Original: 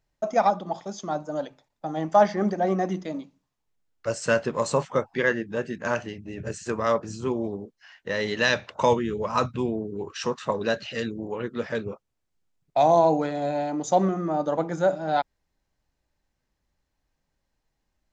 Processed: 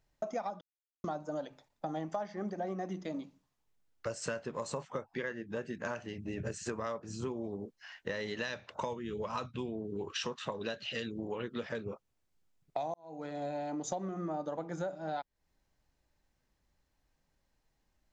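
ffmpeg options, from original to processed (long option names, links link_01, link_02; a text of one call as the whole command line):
ffmpeg -i in.wav -filter_complex "[0:a]asettb=1/sr,asplit=3[link_01][link_02][link_03];[link_01]atrim=end=9.064[link_04];[link_02]atrim=start=9.06:end=11.69,asetpts=PTS-STARTPTS,afade=type=in:duration=0.004:curve=qsin,afade=type=out:start_time=2.626:duration=0.004:curve=qsin,equalizer=frequency=3200:width_type=o:width=0.74:gain=7.5[link_05];[link_03]atrim=start=11.686[link_06];[link_04][link_05]acrossfade=duration=0.004:curve1=hsin:curve2=qsin[link_07];[link_07][link_06]acrossfade=duration=0.004:curve1=qsin:curve2=hsin,asplit=4[link_08][link_09][link_10][link_11];[link_08]atrim=end=0.61,asetpts=PTS-STARTPTS,afade=type=out:start_time=0.606:duration=0.004:curve=hsin[link_12];[link_09]atrim=start=0.61:end=1.04,asetpts=PTS-STARTPTS,volume=0[link_13];[link_10]atrim=start=1.04:end=12.94,asetpts=PTS-STARTPTS,afade=type=in:duration=0.004:curve=hsin,afade=type=out:start_time=11.896:duration=0.004:curve=hsin[link_14];[link_11]atrim=start=12.94,asetpts=PTS-STARTPTS,afade=type=in:duration=1.31[link_15];[link_12][link_13][link_14][link_15]concat=n=4:v=0:a=1,acompressor=threshold=-34dB:ratio=12" out.wav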